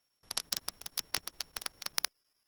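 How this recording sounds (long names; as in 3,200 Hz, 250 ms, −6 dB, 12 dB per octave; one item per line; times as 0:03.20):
a buzz of ramps at a fixed pitch in blocks of 8 samples
chopped level 9.8 Hz, depth 65%, duty 85%
Opus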